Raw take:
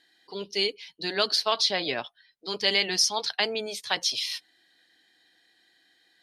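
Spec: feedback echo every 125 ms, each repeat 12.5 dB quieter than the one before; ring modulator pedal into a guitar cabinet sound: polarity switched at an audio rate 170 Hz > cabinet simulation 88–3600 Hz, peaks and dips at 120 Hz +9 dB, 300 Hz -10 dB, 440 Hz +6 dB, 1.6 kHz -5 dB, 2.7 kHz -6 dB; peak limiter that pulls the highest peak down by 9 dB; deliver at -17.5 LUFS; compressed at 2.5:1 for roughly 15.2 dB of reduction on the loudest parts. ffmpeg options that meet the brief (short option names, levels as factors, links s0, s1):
-af "acompressor=threshold=0.00708:ratio=2.5,alimiter=level_in=2.37:limit=0.0631:level=0:latency=1,volume=0.422,aecho=1:1:125|250|375:0.237|0.0569|0.0137,aeval=exprs='val(0)*sgn(sin(2*PI*170*n/s))':c=same,highpass=88,equalizer=f=120:t=q:w=4:g=9,equalizer=f=300:t=q:w=4:g=-10,equalizer=f=440:t=q:w=4:g=6,equalizer=f=1600:t=q:w=4:g=-5,equalizer=f=2700:t=q:w=4:g=-6,lowpass=f=3600:w=0.5412,lowpass=f=3600:w=1.3066,volume=28.2"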